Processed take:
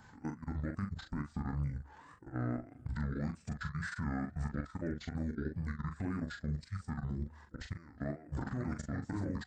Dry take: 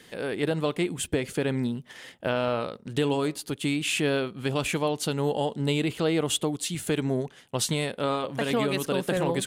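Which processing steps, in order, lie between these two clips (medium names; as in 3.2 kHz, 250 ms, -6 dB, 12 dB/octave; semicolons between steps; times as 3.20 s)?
coarse spectral quantiser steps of 15 dB; tone controls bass +3 dB, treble +8 dB; de-hum 45.19 Hz, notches 3; compression 8:1, threshold -31 dBFS, peak gain reduction 13.5 dB; peak limiter -28 dBFS, peak gain reduction 9 dB; level held to a coarse grid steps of 19 dB; wow and flutter 140 cents; pitch shift -11 st; high-order bell 3.7 kHz -14 dB; doubling 41 ms -6.5 dB; speakerphone echo 370 ms, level -28 dB; trim +2 dB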